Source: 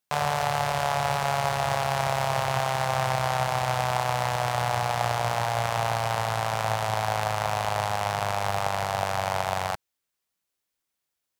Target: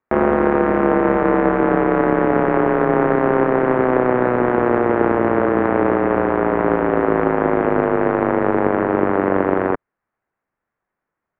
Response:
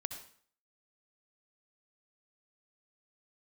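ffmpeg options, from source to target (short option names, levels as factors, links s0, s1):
-af "highpass=f=410:t=q:w=0.5412,highpass=f=410:t=q:w=1.307,lowpass=f=2200:t=q:w=0.5176,lowpass=f=2200:t=q:w=0.7071,lowpass=f=2200:t=q:w=1.932,afreqshift=-370,acontrast=79,volume=1.68"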